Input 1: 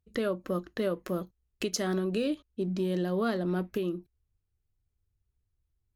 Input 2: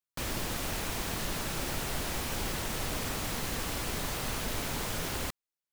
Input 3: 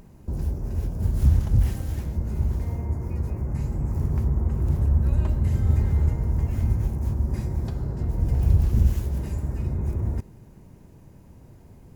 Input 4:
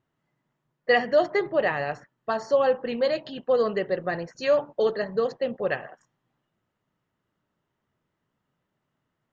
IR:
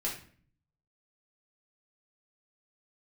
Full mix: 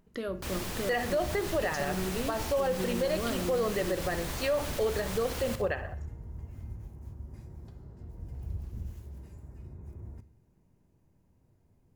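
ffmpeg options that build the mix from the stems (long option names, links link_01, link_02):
-filter_complex "[0:a]volume=-7.5dB,asplit=2[link_01][link_02];[link_02]volume=-9.5dB[link_03];[1:a]adelay=250,volume=-3dB,asplit=2[link_04][link_05];[link_05]volume=-11.5dB[link_06];[2:a]volume=-20dB,asplit=2[link_07][link_08];[link_08]volume=-14dB[link_09];[3:a]volume=-1dB,asplit=2[link_10][link_11];[link_11]volume=-18.5dB[link_12];[4:a]atrim=start_sample=2205[link_13];[link_03][link_09]amix=inputs=2:normalize=0[link_14];[link_14][link_13]afir=irnorm=-1:irlink=0[link_15];[link_06][link_12]amix=inputs=2:normalize=0,aecho=0:1:62|124|186|248|310|372|434:1|0.48|0.23|0.111|0.0531|0.0255|0.0122[link_16];[link_01][link_04][link_07][link_10][link_15][link_16]amix=inputs=6:normalize=0,alimiter=limit=-20.5dB:level=0:latency=1:release=101"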